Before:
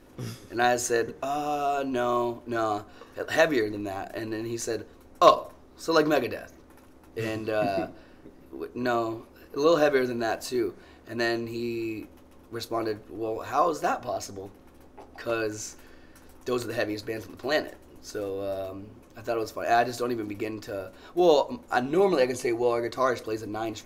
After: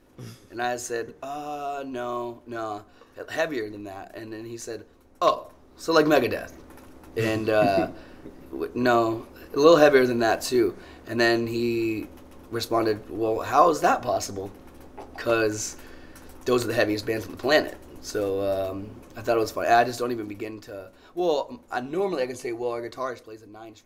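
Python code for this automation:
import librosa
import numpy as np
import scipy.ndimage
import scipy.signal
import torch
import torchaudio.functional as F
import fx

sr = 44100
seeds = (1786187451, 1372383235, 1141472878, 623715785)

y = fx.gain(x, sr, db=fx.line((5.24, -4.5), (6.3, 6.0), (19.48, 6.0), (20.72, -4.0), (22.95, -4.0), (23.35, -11.5)))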